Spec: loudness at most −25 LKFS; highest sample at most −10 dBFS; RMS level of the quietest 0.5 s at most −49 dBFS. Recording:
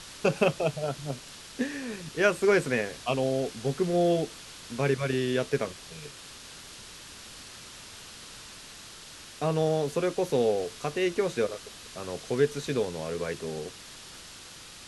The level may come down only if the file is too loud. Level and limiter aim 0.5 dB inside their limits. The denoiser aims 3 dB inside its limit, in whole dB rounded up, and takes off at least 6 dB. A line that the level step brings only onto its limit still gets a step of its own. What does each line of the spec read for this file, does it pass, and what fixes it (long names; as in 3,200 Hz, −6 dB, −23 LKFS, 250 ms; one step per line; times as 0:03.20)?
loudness −29.0 LKFS: in spec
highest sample −9.0 dBFS: out of spec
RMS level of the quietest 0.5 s −47 dBFS: out of spec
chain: broadband denoise 6 dB, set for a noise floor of −47 dBFS
brickwall limiter −10.5 dBFS